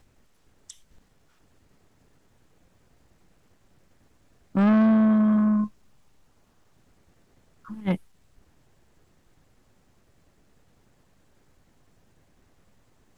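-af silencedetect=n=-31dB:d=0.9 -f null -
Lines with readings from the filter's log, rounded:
silence_start: 0.70
silence_end: 4.55 | silence_duration: 3.85
silence_start: 5.67
silence_end: 7.71 | silence_duration: 2.04
silence_start: 7.96
silence_end: 13.18 | silence_duration: 5.22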